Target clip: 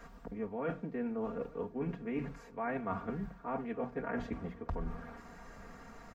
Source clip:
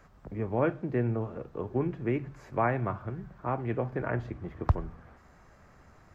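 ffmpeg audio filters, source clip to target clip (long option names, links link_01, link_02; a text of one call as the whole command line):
ffmpeg -i in.wav -filter_complex "[0:a]equalizer=frequency=63:width_type=o:width=0.36:gain=-11.5,bandreject=frequency=60:width_type=h:width=6,bandreject=frequency=120:width_type=h:width=6,bandreject=frequency=180:width_type=h:width=6,aecho=1:1:4.3:1,areverse,acompressor=threshold=-37dB:ratio=10,areverse,asplit=2[link_01][link_02];[link_02]adelay=874.6,volume=-20dB,highshelf=frequency=4000:gain=-19.7[link_03];[link_01][link_03]amix=inputs=2:normalize=0,volume=3dB" out.wav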